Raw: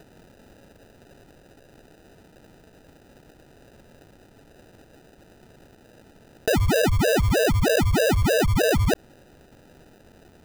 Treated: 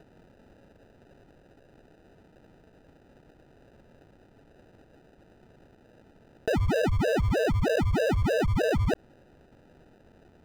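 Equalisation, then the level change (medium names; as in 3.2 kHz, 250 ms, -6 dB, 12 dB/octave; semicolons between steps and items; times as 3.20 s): low-pass 2.2 kHz 6 dB/octave; -4.5 dB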